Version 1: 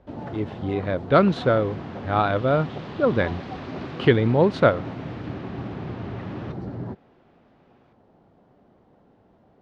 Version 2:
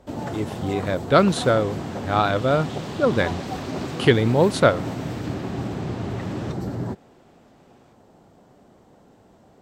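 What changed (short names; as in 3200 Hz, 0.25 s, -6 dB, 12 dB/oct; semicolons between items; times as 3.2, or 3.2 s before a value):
first sound +4.0 dB; master: remove air absorption 250 m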